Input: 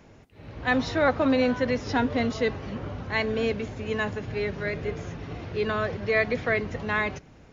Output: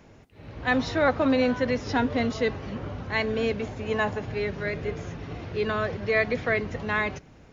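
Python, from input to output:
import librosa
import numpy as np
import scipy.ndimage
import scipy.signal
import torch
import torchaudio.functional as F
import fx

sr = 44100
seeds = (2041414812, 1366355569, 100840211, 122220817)

y = fx.dynamic_eq(x, sr, hz=790.0, q=1.4, threshold_db=-44.0, ratio=4.0, max_db=7, at=(3.59, 4.34))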